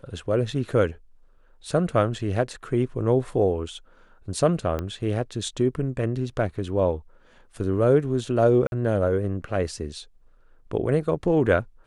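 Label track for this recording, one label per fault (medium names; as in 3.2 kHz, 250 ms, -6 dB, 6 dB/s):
4.790000	4.790000	pop -16 dBFS
8.670000	8.720000	dropout 51 ms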